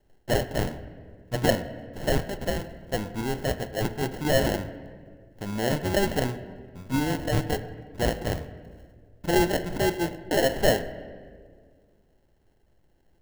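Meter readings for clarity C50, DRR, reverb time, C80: 13.0 dB, 11.0 dB, 1.8 s, 14.0 dB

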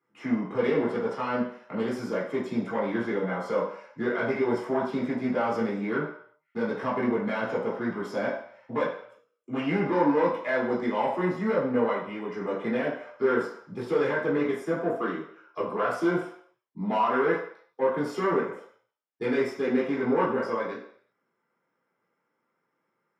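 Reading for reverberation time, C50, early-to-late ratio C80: 0.60 s, 4.0 dB, 8.0 dB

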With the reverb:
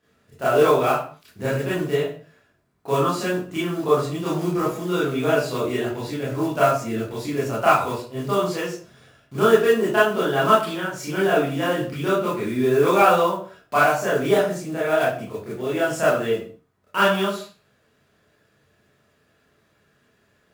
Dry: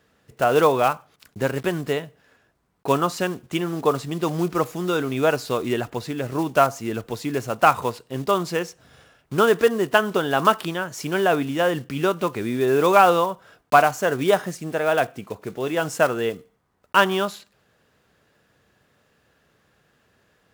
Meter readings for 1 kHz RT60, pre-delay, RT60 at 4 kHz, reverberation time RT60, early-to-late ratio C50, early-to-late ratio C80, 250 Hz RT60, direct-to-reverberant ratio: 0.45 s, 24 ms, 0.35 s, 0.45 s, 2.0 dB, 8.5 dB, 0.50 s, -10.0 dB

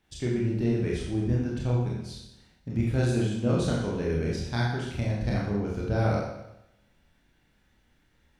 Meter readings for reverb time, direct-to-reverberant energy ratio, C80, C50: 0.90 s, -4.5 dB, 4.0 dB, 1.5 dB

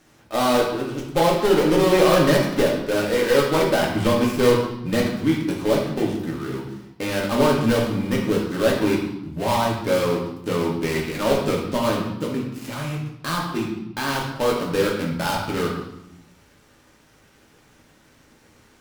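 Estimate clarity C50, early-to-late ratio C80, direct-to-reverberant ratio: 3.5 dB, 6.5 dB, -3.0 dB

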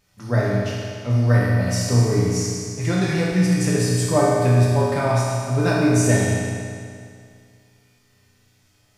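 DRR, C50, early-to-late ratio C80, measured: -7.5 dB, -2.5 dB, -0.5 dB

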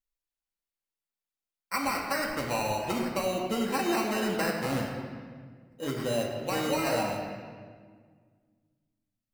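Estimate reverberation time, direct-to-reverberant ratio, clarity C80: 1.7 s, -1.5 dB, 4.0 dB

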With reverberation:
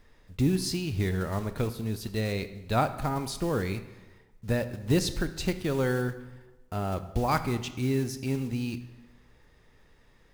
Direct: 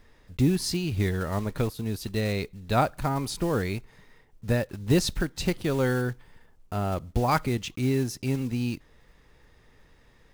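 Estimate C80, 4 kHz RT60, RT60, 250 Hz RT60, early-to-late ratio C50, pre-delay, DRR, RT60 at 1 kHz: 14.5 dB, 0.85 s, 1.1 s, 1.2 s, 13.0 dB, 19 ms, 11.0 dB, 1.1 s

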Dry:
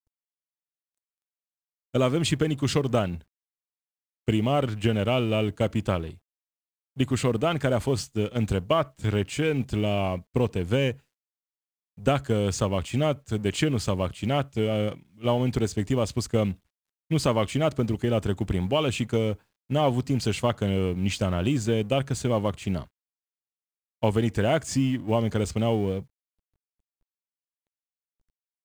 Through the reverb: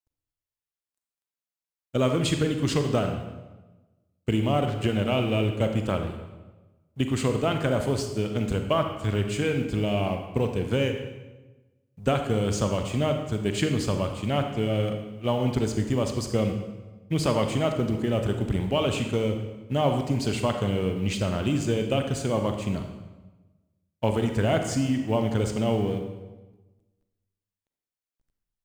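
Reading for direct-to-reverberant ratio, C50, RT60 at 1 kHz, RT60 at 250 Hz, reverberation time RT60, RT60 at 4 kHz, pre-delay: 5.0 dB, 6.0 dB, 1.1 s, 1.3 s, 1.2 s, 0.90 s, 33 ms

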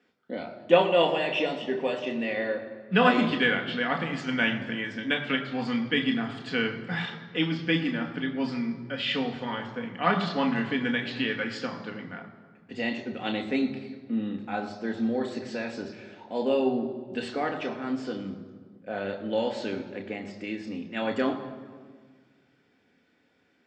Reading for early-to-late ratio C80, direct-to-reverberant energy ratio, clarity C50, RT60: 10.5 dB, 3.0 dB, 9.5 dB, 1.6 s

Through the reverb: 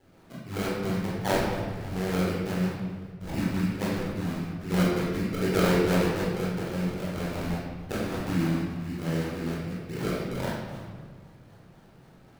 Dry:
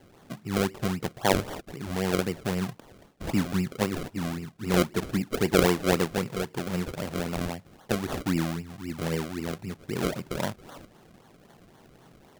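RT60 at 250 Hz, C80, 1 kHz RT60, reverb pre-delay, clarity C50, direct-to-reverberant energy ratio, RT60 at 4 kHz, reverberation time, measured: 2.2 s, 2.0 dB, 1.4 s, 16 ms, -0.5 dB, -7.0 dB, 1.1 s, 1.5 s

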